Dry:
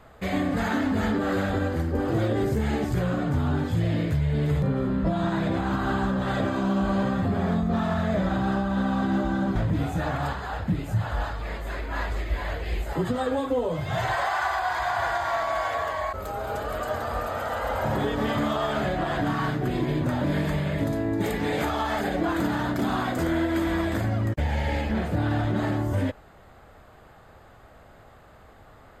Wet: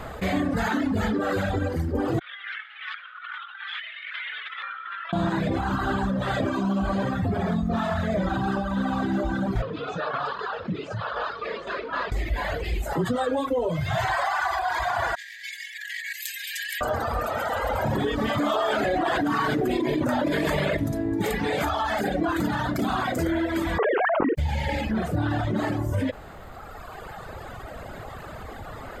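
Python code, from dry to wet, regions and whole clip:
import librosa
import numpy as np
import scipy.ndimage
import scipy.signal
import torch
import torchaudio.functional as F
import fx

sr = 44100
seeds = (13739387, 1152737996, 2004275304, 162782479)

y = fx.chain(x, sr, fx.cheby1_bandpass(low_hz=1300.0, high_hz=3400.0, order=3),
    fx.over_compress(threshold_db=-47.0, ratio=-0.5), at=(2.19, 5.13))
y = fx.chain(y, sr, fx.tremolo_shape(shape='saw_down', hz=3.9, depth_pct=45),
    fx.cabinet(low_hz=250.0, low_slope=12, high_hz=4800.0, hz=(300.0, 450.0, 790.0, 1200.0, 2000.0), db=(-7, 6, -8, 6, -7)), at=(9.62, 12.12))
y = fx.chain(y, sr, fx.brickwall_highpass(low_hz=1600.0),
    fx.over_compress(threshold_db=-43.0, ratio=-0.5), at=(15.15, 16.81))
y = fx.chain(y, sr, fx.low_shelf_res(hz=220.0, db=-8.0, q=1.5),
    fx.env_flatten(amount_pct=100), at=(18.39, 20.77))
y = fx.chain(y, sr, fx.sine_speech(),
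    fx.air_absorb(metres=340.0),
    fx.env_flatten(amount_pct=100), at=(23.78, 24.35))
y = fx.dereverb_blind(y, sr, rt60_s=2.0)
y = fx.env_flatten(y, sr, amount_pct=50)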